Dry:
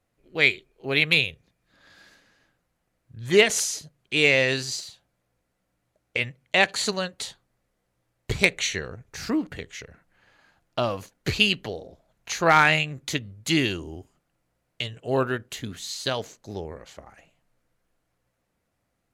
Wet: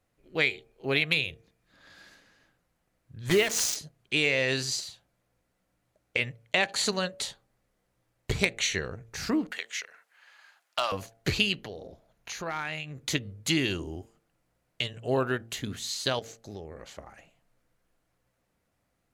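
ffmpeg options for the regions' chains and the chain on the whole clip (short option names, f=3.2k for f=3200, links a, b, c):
-filter_complex "[0:a]asettb=1/sr,asplit=3[a][b][c];[a]atrim=end=3.294[d];[b]atrim=start=3.29:end=3.76,asetpts=PTS-STARTPTS,afade=t=in:d=0.004:c=qsin,afade=t=out:st=0.466:d=0.004:c=qsin,equalizer=f=10k:w=1:g=-6.5,acontrast=25,acrusher=bits=3:mix=0:aa=0.5[e];[c]atrim=start=3.756[f];[d][e]acrossfade=d=0.004:c1=hsin:c2=qsin[g];[g][f]acrossfade=d=0.004:c1=qsin:c2=hsin,asettb=1/sr,asplit=3[h][i][j];[h]atrim=end=9.514[k];[i]atrim=start=9.51:end=10.92,asetpts=PTS-STARTPTS,afade=t=in:d=0.004:c=qsin,afade=t=out:st=1.406:d=0.004:c=qsin,highpass=1.1k,acontrast=24,asoftclip=type=hard:threshold=-16dB[l];[j]atrim=start=10.916[m];[k][l]acrossfade=d=0.004:c1=hsin:c2=qsin[n];[n][m]acrossfade=d=0.004:c1=qsin:c2=hsin,asettb=1/sr,asplit=3[o][p][q];[o]atrim=end=11.564[r];[p]atrim=start=11.56:end=13.01,asetpts=PTS-STARTPTS,afade=t=in:d=0.004:c=qsin,afade=t=out:st=1.446:d=0.004:c=qsin,bandreject=f=7.8k:w=8.9,acompressor=threshold=-38dB:ratio=2.5:attack=3.2:release=140:knee=1:detection=peak[s];[q]atrim=start=13.006[t];[r][s]acrossfade=d=0.004:c1=hsin:c2=qsin[u];[u][t]acrossfade=d=0.004:c1=qsin:c2=hsin,asettb=1/sr,asplit=3[v][w][x];[v]atrim=end=16.194[y];[w]atrim=start=16.19:end=16.79,asetpts=PTS-STARTPTS,afade=t=in:d=0.004:c=qsin,afade=t=out:st=0.596:d=0.004:c=qsin,bandreject=f=970:w=5.6,acompressor=threshold=-39dB:ratio=2.5:attack=3.2:release=140:knee=1:detection=peak[z];[x]atrim=start=16.786[aa];[y][z]acrossfade=d=0.004:c1=hsin:c2=qsin[ab];[ab][aa]acrossfade=d=0.004:c1=qsin:c2=hsin,acompressor=threshold=-22dB:ratio=4,bandreject=f=113.5:t=h:w=4,bandreject=f=227:t=h:w=4,bandreject=f=340.5:t=h:w=4,bandreject=f=454:t=h:w=4,bandreject=f=567.5:t=h:w=4,bandreject=f=681:t=h:w=4,bandreject=f=794.5:t=h:w=4"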